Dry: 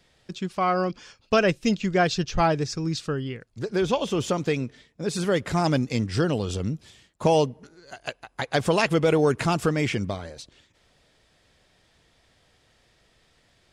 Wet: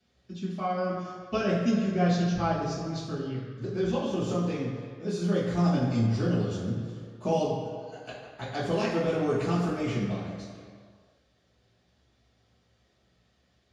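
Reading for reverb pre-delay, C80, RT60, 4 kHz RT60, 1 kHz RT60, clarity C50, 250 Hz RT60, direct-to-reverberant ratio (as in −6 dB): 3 ms, 3.5 dB, 2.1 s, 1.5 s, 2.1 s, 1.0 dB, 1.7 s, −9.0 dB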